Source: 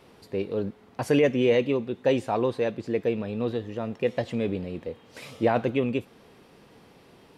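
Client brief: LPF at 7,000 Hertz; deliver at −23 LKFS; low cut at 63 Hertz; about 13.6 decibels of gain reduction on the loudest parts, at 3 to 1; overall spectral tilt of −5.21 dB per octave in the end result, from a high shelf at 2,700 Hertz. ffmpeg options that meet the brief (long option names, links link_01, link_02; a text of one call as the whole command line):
ffmpeg -i in.wav -af "highpass=63,lowpass=7000,highshelf=frequency=2700:gain=-4.5,acompressor=threshold=-36dB:ratio=3,volume=15dB" out.wav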